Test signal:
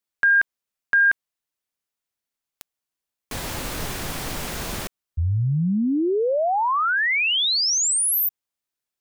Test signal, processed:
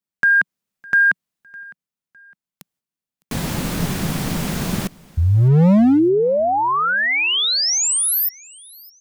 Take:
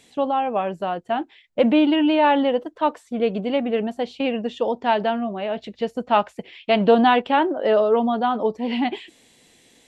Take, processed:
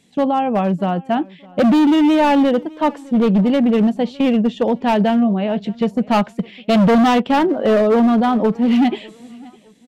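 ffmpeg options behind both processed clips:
-af "agate=range=-8dB:threshold=-48dB:ratio=3:release=224:detection=rms,equalizer=f=180:w=1.2:g=14,asoftclip=type=hard:threshold=-13dB,aecho=1:1:608|1216:0.0631|0.0227,volume=2.5dB"

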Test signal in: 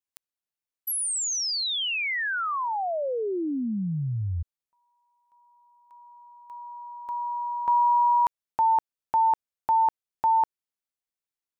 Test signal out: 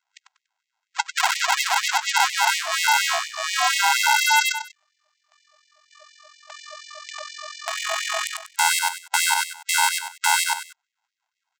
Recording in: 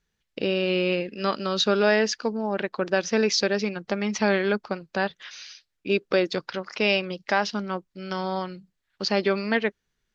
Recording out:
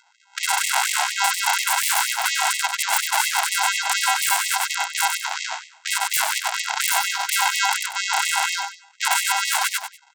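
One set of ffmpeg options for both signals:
-filter_complex "[0:a]afftfilt=real='real(if(lt(b,920),b+92*(1-2*mod(floor(b/92),2)),b),0)':imag='imag(if(lt(b,920),b+92*(1-2*mod(floor(b/92),2)),b),0)':win_size=2048:overlap=0.75,highpass=f=120:w=0.5412,highpass=f=120:w=1.3066,afftfilt=real='re*(1-between(b*sr/4096,200,860))':imag='im*(1-between(b*sr/4096,200,860))':win_size=4096:overlap=0.75,aresample=16000,acrusher=samples=27:mix=1:aa=0.000001,aresample=44100,aeval=exprs='0.0531*(abs(mod(val(0)/0.0531+3,4)-2)-1)':c=same,asplit=2[a][b];[b]aecho=0:1:96|192|288:0.335|0.1|0.0301[c];[a][c]amix=inputs=2:normalize=0,alimiter=level_in=31.5dB:limit=-1dB:release=50:level=0:latency=1,afftfilt=real='re*gte(b*sr/1024,600*pow(1900/600,0.5+0.5*sin(2*PI*4.2*pts/sr)))':imag='im*gte(b*sr/1024,600*pow(1900/600,0.5+0.5*sin(2*PI*4.2*pts/sr)))':win_size=1024:overlap=0.75,volume=-3.5dB"

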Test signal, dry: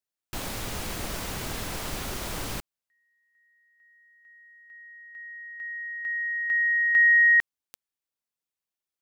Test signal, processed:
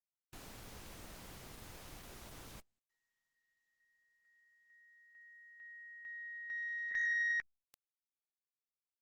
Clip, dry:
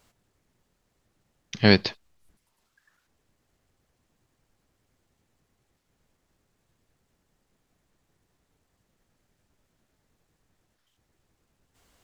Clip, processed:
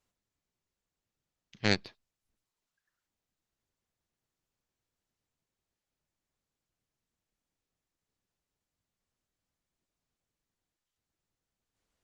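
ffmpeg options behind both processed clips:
-af "aeval=exprs='0.891*(cos(1*acos(clip(val(0)/0.891,-1,1)))-cos(1*PI/2))+0.0447*(cos(2*acos(clip(val(0)/0.891,-1,1)))-cos(2*PI/2))+0.224*(cos(3*acos(clip(val(0)/0.891,-1,1)))-cos(3*PI/2))':c=same,volume=-5.5dB" -ar 48000 -c:a libopus -b:a 16k

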